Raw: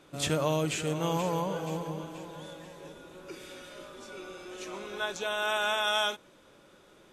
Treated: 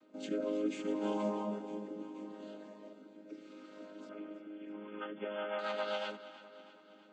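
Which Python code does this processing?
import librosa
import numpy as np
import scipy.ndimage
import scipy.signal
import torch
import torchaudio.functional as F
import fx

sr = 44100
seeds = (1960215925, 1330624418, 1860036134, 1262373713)

y = fx.chord_vocoder(x, sr, chord='major triad', root=56)
y = fx.rotary_switch(y, sr, hz=0.7, then_hz=8.0, switch_at_s=4.67)
y = fx.brickwall_lowpass(y, sr, high_hz=3500.0, at=(4.09, 5.59))
y = fx.echo_feedback(y, sr, ms=324, feedback_pct=56, wet_db=-15)
y = y * librosa.db_to_amplitude(-3.5)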